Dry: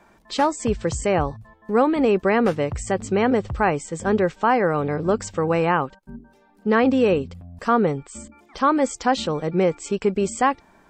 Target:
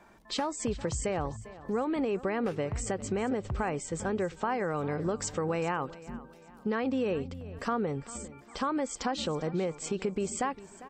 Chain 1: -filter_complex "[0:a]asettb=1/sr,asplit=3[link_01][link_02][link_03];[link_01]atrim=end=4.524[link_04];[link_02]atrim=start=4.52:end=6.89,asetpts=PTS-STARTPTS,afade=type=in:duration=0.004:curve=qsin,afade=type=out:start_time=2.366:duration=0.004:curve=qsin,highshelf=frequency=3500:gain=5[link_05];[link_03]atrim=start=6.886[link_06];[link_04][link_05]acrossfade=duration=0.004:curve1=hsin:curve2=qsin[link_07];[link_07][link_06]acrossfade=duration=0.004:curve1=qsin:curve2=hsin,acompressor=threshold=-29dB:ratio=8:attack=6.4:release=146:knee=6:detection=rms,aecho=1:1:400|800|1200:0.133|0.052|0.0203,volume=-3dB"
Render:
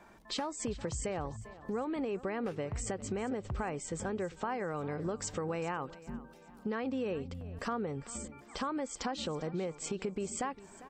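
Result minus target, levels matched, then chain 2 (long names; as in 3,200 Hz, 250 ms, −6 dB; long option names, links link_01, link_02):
downward compressor: peak gain reduction +5.5 dB
-filter_complex "[0:a]asettb=1/sr,asplit=3[link_01][link_02][link_03];[link_01]atrim=end=4.524[link_04];[link_02]atrim=start=4.52:end=6.89,asetpts=PTS-STARTPTS,afade=type=in:duration=0.004:curve=qsin,afade=type=out:start_time=2.366:duration=0.004:curve=qsin,highshelf=frequency=3500:gain=5[link_05];[link_03]atrim=start=6.886[link_06];[link_04][link_05]acrossfade=duration=0.004:curve1=hsin:curve2=qsin[link_07];[link_07][link_06]acrossfade=duration=0.004:curve1=qsin:curve2=hsin,acompressor=threshold=-23dB:ratio=8:attack=6.4:release=146:knee=6:detection=rms,aecho=1:1:400|800|1200:0.133|0.052|0.0203,volume=-3dB"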